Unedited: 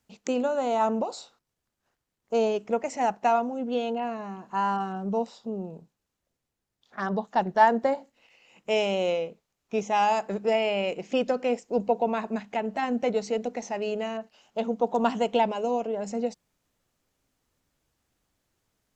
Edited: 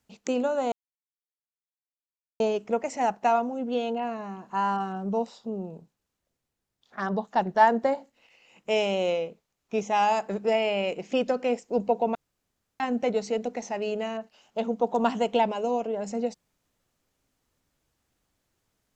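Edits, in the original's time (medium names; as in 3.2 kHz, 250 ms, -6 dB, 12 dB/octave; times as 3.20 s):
0.72–2.40 s: mute
12.15–12.80 s: room tone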